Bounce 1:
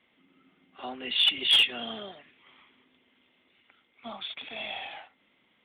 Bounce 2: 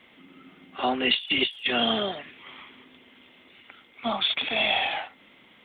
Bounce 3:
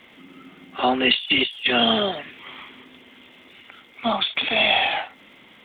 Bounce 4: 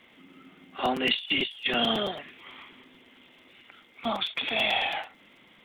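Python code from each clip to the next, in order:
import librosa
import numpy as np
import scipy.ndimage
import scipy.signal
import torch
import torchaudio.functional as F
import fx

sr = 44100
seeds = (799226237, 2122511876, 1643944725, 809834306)

y1 = fx.over_compress(x, sr, threshold_db=-32.0, ratio=-0.5)
y1 = y1 * librosa.db_to_amplitude(8.0)
y2 = fx.dmg_crackle(y1, sr, seeds[0], per_s=340.0, level_db=-59.0)
y2 = fx.end_taper(y2, sr, db_per_s=200.0)
y2 = y2 * librosa.db_to_amplitude(5.5)
y3 = fx.buffer_crackle(y2, sr, first_s=0.85, period_s=0.11, block=256, kind='repeat')
y3 = y3 * librosa.db_to_amplitude(-7.0)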